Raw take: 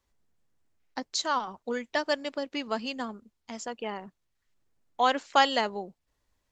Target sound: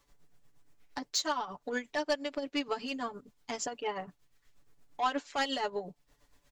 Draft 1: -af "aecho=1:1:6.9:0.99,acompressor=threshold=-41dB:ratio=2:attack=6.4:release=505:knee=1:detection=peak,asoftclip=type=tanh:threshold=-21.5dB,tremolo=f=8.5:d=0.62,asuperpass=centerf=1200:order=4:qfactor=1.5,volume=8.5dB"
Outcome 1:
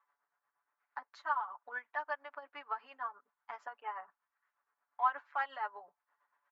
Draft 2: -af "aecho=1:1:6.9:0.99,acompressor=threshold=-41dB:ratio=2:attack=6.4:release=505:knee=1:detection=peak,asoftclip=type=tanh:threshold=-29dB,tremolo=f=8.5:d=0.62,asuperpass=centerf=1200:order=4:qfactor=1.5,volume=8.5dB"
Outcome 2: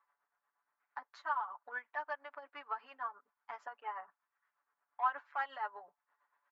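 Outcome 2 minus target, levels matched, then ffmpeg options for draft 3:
1,000 Hz band +4.0 dB
-af "aecho=1:1:6.9:0.99,acompressor=threshold=-41dB:ratio=2:attack=6.4:release=505:knee=1:detection=peak,asoftclip=type=tanh:threshold=-29dB,tremolo=f=8.5:d=0.62,volume=8.5dB"

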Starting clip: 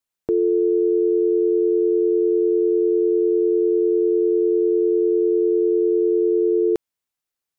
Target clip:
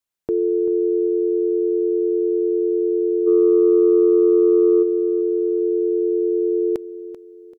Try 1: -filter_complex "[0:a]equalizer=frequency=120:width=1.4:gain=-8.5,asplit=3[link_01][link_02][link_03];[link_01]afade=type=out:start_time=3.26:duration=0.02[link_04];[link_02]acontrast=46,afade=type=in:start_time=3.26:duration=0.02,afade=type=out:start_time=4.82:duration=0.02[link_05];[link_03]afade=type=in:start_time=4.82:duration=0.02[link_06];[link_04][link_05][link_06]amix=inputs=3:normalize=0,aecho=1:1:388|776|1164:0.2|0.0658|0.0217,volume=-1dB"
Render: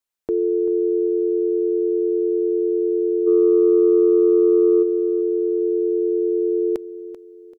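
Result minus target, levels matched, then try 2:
125 Hz band −4.0 dB
-filter_complex "[0:a]asplit=3[link_01][link_02][link_03];[link_01]afade=type=out:start_time=3.26:duration=0.02[link_04];[link_02]acontrast=46,afade=type=in:start_time=3.26:duration=0.02,afade=type=out:start_time=4.82:duration=0.02[link_05];[link_03]afade=type=in:start_time=4.82:duration=0.02[link_06];[link_04][link_05][link_06]amix=inputs=3:normalize=0,aecho=1:1:388|776|1164:0.2|0.0658|0.0217,volume=-1dB"

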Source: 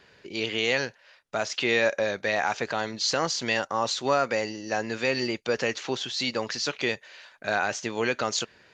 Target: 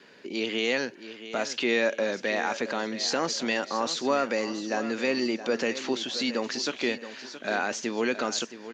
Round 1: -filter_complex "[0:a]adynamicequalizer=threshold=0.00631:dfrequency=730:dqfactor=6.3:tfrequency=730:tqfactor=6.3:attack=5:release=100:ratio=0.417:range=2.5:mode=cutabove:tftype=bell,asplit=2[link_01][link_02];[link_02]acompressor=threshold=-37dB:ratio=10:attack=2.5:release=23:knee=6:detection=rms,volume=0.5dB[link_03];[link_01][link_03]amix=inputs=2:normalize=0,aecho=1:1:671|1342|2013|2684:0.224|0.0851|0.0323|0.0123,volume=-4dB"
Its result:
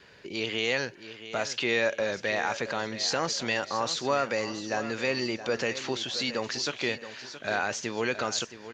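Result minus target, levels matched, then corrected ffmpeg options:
250 Hz band −4.0 dB
-filter_complex "[0:a]adynamicequalizer=threshold=0.00631:dfrequency=730:dqfactor=6.3:tfrequency=730:tqfactor=6.3:attack=5:release=100:ratio=0.417:range=2.5:mode=cutabove:tftype=bell,highpass=frequency=240:width_type=q:width=2.1,asplit=2[link_01][link_02];[link_02]acompressor=threshold=-37dB:ratio=10:attack=2.5:release=23:knee=6:detection=rms,volume=0.5dB[link_03];[link_01][link_03]amix=inputs=2:normalize=0,aecho=1:1:671|1342|2013|2684:0.224|0.0851|0.0323|0.0123,volume=-4dB"

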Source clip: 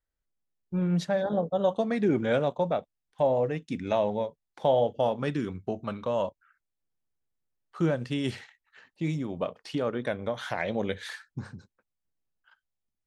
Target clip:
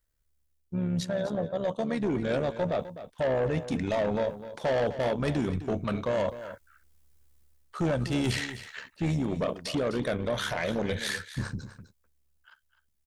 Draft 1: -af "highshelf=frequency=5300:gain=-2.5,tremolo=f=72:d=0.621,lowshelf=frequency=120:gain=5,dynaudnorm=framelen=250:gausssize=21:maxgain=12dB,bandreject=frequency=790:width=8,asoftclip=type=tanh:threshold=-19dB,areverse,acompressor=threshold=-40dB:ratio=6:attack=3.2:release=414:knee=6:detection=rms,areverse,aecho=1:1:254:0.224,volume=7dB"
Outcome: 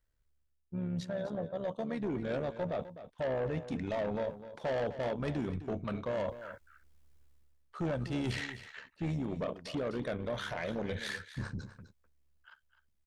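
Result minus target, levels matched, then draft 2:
downward compressor: peak gain reduction +6.5 dB; 8,000 Hz band −5.0 dB
-af "highshelf=frequency=5300:gain=8,tremolo=f=72:d=0.621,lowshelf=frequency=120:gain=5,dynaudnorm=framelen=250:gausssize=21:maxgain=12dB,bandreject=frequency=790:width=8,asoftclip=type=tanh:threshold=-19dB,areverse,acompressor=threshold=-32dB:ratio=6:attack=3.2:release=414:knee=6:detection=rms,areverse,aecho=1:1:254:0.224,volume=7dB"

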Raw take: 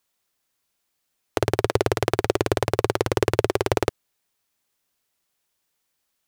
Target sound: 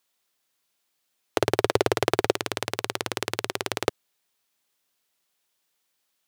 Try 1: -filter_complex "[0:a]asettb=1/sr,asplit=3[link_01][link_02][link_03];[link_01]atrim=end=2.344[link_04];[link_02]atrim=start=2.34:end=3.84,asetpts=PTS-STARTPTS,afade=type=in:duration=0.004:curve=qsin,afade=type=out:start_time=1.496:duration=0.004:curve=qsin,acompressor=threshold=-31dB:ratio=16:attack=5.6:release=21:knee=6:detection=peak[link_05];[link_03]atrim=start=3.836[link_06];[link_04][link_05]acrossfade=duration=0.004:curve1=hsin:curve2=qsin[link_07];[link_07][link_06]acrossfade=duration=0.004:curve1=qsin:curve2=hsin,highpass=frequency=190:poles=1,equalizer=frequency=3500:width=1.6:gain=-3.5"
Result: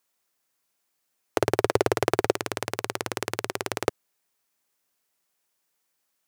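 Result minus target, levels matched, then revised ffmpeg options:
4,000 Hz band −4.0 dB
-filter_complex "[0:a]asettb=1/sr,asplit=3[link_01][link_02][link_03];[link_01]atrim=end=2.344[link_04];[link_02]atrim=start=2.34:end=3.84,asetpts=PTS-STARTPTS,afade=type=in:duration=0.004:curve=qsin,afade=type=out:start_time=1.496:duration=0.004:curve=qsin,acompressor=threshold=-31dB:ratio=16:attack=5.6:release=21:knee=6:detection=peak[link_05];[link_03]atrim=start=3.836[link_06];[link_04][link_05]acrossfade=duration=0.004:curve1=hsin:curve2=qsin[link_07];[link_07][link_06]acrossfade=duration=0.004:curve1=qsin:curve2=hsin,highpass=frequency=190:poles=1,equalizer=frequency=3500:width=1.6:gain=2.5"

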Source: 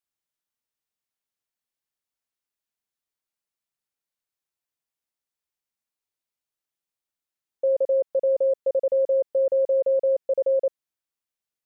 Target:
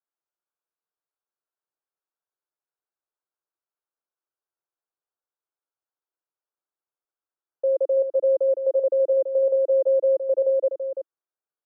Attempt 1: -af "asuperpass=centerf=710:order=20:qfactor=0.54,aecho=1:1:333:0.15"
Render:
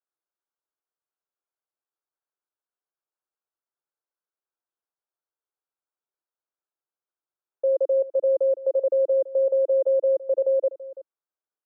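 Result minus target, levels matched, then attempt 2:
echo-to-direct −9 dB
-af "asuperpass=centerf=710:order=20:qfactor=0.54,aecho=1:1:333:0.422"

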